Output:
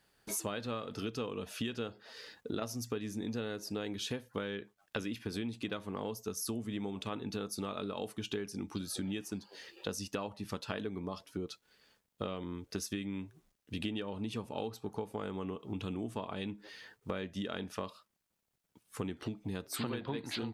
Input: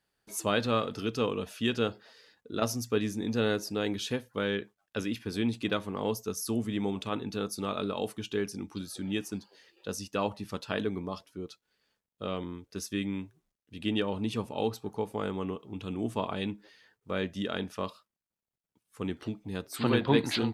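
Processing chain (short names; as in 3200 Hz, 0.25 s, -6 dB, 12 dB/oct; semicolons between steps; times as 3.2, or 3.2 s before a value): compressor 12:1, threshold -43 dBFS, peak gain reduction 24.5 dB; gain +8.5 dB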